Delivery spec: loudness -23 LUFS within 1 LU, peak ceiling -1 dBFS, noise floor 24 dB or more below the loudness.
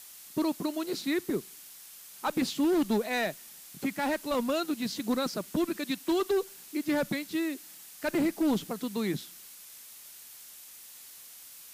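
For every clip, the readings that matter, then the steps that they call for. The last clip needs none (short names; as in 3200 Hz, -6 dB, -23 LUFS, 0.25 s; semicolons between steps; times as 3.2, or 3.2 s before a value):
noise floor -50 dBFS; noise floor target -55 dBFS; loudness -31.0 LUFS; peak -19.0 dBFS; loudness target -23.0 LUFS
-> noise print and reduce 6 dB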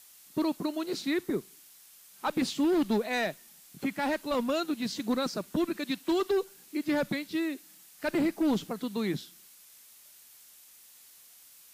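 noise floor -56 dBFS; loudness -31.0 LUFS; peak -19.5 dBFS; loudness target -23.0 LUFS
-> gain +8 dB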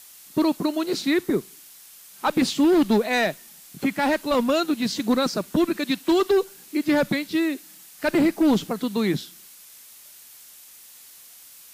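loudness -23.0 LUFS; peak -11.5 dBFS; noise floor -48 dBFS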